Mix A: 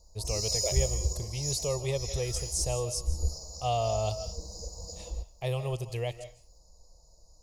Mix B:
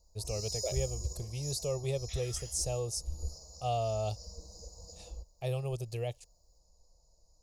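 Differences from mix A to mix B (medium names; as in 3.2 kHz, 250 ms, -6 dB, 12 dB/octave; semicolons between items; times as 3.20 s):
speech: add graphic EQ with 31 bands 1 kHz -9 dB, 2 kHz -8 dB, 3.15 kHz -5 dB; first sound -8.0 dB; reverb: off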